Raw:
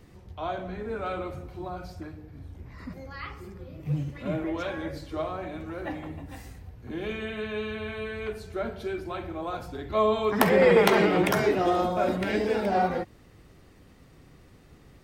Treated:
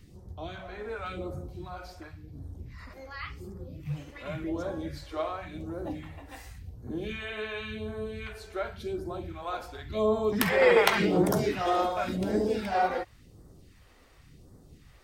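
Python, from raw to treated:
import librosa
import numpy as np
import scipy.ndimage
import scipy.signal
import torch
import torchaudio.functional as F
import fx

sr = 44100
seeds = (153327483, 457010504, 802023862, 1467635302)

y = fx.phaser_stages(x, sr, stages=2, low_hz=130.0, high_hz=2500.0, hz=0.91, feedback_pct=25)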